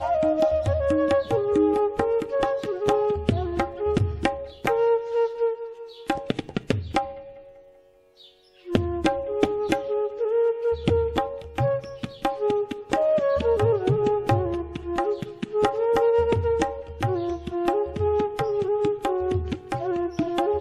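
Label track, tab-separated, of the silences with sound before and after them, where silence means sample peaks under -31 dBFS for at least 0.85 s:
7.120000	8.690000	silence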